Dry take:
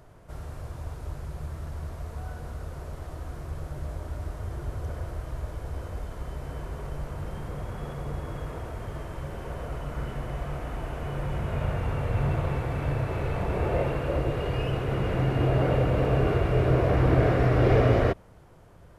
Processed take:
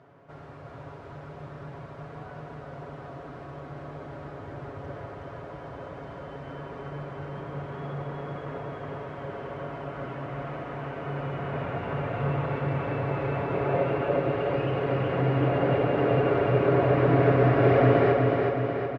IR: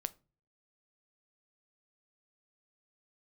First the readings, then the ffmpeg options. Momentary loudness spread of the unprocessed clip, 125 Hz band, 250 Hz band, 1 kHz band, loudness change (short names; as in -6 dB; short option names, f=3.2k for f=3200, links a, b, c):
16 LU, -2.0 dB, +2.0 dB, +3.5 dB, +2.5 dB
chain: -filter_complex "[0:a]highpass=170,lowpass=2.7k,aecho=1:1:7.2:0.52,asplit=2[a][b];[b]aecho=0:1:369|738|1107|1476|1845|2214|2583|2952|3321:0.668|0.401|0.241|0.144|0.0866|0.052|0.0312|0.0187|0.0112[c];[a][c]amix=inputs=2:normalize=0"